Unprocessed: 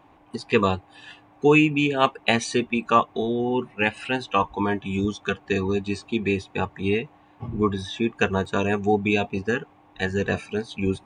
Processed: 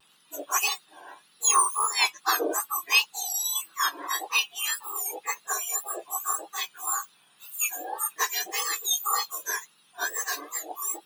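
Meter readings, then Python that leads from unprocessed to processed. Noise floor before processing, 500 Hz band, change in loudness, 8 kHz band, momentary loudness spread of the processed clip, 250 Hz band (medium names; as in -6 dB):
-55 dBFS, -16.0 dB, -2.5 dB, +17.0 dB, 10 LU, -23.0 dB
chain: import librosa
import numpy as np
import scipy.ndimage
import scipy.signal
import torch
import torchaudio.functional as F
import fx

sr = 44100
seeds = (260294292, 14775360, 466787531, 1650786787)

y = fx.octave_mirror(x, sr, pivot_hz=1700.0)
y = fx.wow_flutter(y, sr, seeds[0], rate_hz=2.1, depth_cents=97.0)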